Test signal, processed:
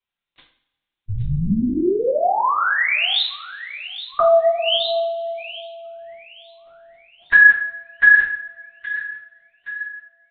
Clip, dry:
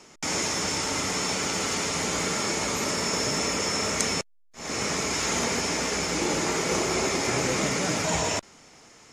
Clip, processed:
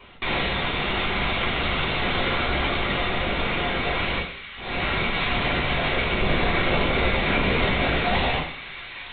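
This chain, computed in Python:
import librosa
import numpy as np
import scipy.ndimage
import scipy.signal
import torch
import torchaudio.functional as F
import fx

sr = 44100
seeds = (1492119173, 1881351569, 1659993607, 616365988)

p1 = fx.high_shelf(x, sr, hz=2700.0, db=10.0)
p2 = fx.rider(p1, sr, range_db=4, speed_s=0.5)
p3 = p2 + fx.echo_wet_highpass(p2, sr, ms=820, feedback_pct=55, hz=1600.0, wet_db=-12.5, dry=0)
p4 = fx.lpc_vocoder(p3, sr, seeds[0], excitation='whisper', order=10)
p5 = fx.rev_double_slope(p4, sr, seeds[1], early_s=0.49, late_s=1.7, knee_db=-21, drr_db=-3.0)
y = p5 * 10.0 ** (-1.0 / 20.0)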